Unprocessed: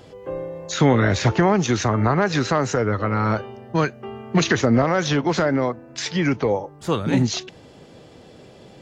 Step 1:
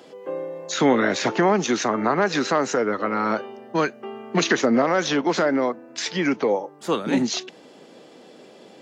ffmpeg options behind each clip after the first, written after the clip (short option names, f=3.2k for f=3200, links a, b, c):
-af "highpass=f=210:w=0.5412,highpass=f=210:w=1.3066"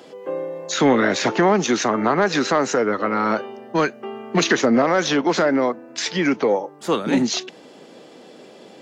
-af "asoftclip=type=tanh:threshold=-8dB,volume=3dB"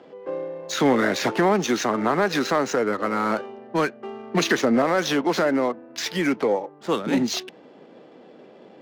-af "adynamicsmooth=sensitivity=8:basefreq=2k,volume=-3dB"